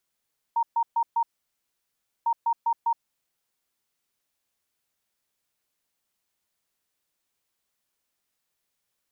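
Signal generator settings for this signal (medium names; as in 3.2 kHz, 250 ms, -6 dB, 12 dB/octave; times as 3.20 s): beep pattern sine 927 Hz, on 0.07 s, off 0.13 s, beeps 4, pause 1.03 s, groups 2, -20 dBFS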